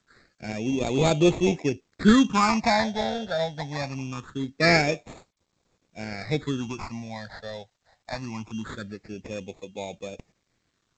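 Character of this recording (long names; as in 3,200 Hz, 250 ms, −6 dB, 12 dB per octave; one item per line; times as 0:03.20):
aliases and images of a low sample rate 3,000 Hz, jitter 0%
phaser sweep stages 8, 0.23 Hz, lowest notch 320–1,600 Hz
a quantiser's noise floor 12 bits, dither none
G.722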